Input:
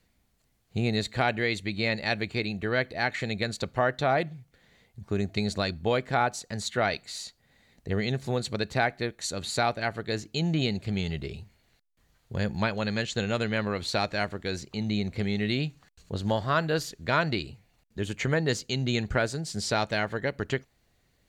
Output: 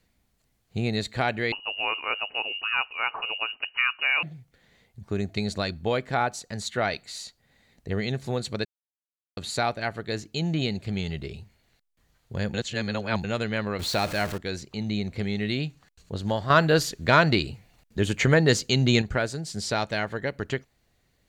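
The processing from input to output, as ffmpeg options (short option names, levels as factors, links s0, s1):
-filter_complex "[0:a]asettb=1/sr,asplit=3[s0][s1][s2];[s0]atrim=end=1.524[s3];[s1]atrim=start=1.52:end=4.23,asetpts=PTS-STARTPTS,afade=t=in:d=0.004:c=qsin,afade=t=out:st=2.706:d=0.004:c=qsin,lowpass=f=2600:t=q:w=0.5098,lowpass=f=2600:t=q:w=0.6013,lowpass=f=2600:t=q:w=0.9,lowpass=f=2600:t=q:w=2.563,afreqshift=-3000[s4];[s2]atrim=start=4.226[s5];[s3][s4]acrossfade=d=0.004:c1=hsin:c2=qsin[s6];[s6][s5]acrossfade=d=0.004:c1=qsin:c2=hsin,asettb=1/sr,asplit=3[s7][s8][s9];[s7]atrim=end=13.794[s10];[s8]atrim=start=13.79:end=14.38,asetpts=PTS-STARTPTS,afade=t=in:d=0.004:c=qsin,afade=t=out:st=0.586:d=0.004:c=qsin,aeval=exprs='val(0)+0.5*0.0282*sgn(val(0))':c=same[s11];[s9]atrim=start=14.376[s12];[s10][s11]acrossfade=d=0.004:c1=hsin:c2=qsin[s13];[s13][s12]acrossfade=d=0.004:c1=qsin:c2=hsin,asettb=1/sr,asplit=3[s14][s15][s16];[s14]atrim=end=16.504[s17];[s15]atrim=start=16.5:end=19.02,asetpts=PTS-STARTPTS,afade=t=in:d=0.004:c=qsin,afade=t=out:st=2.516:d=0.004:c=qsin,acontrast=81[s18];[s16]atrim=start=19.016[s19];[s17][s18]acrossfade=d=0.004:c1=hsin:c2=qsin[s20];[s20][s19]acrossfade=d=0.004:c1=qsin:c2=hsin,asplit=5[s21][s22][s23][s24][s25];[s21]atrim=end=8.65,asetpts=PTS-STARTPTS,afade=t=out:st=8.646:d=0.004:c=hsin[s26];[s22]atrim=start=8.65:end=9.37,asetpts=PTS-STARTPTS,volume=0[s27];[s23]atrim=start=9.37:end=12.542,asetpts=PTS-STARTPTS,afade=t=in:d=0.004:c=hsin[s28];[s24]atrim=start=12.538:end=13.242,asetpts=PTS-STARTPTS,areverse[s29];[s25]atrim=start=13.238[s30];[s26][s27][s28]concat=n=3:v=0:a=1[s31];[s31][s29]acrossfade=d=0.004:c1=hsin:c2=hsin[s32];[s32][s30]acrossfade=d=0.004:c1=hsin:c2=hsin"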